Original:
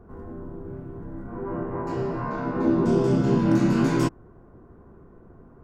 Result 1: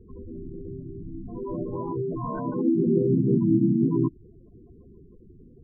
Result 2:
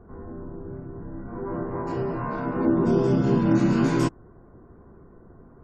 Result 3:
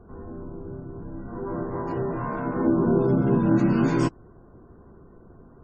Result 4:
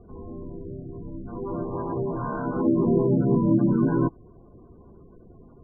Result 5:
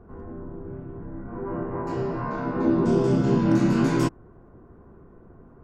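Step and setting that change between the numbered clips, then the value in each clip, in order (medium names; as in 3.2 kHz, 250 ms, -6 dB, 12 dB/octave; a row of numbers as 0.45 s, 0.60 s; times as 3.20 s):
spectral gate, under each frame's peak: -10 dB, -45 dB, -35 dB, -20 dB, -60 dB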